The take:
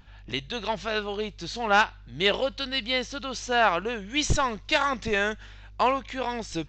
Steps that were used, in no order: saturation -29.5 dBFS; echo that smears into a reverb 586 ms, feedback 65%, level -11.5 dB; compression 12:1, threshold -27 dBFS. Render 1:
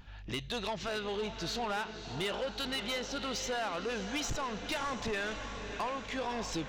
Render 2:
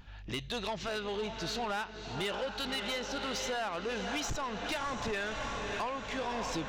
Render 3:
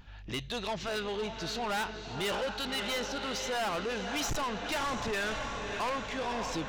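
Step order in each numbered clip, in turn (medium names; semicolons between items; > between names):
compression > echo that smears into a reverb > saturation; echo that smears into a reverb > compression > saturation; echo that smears into a reverb > saturation > compression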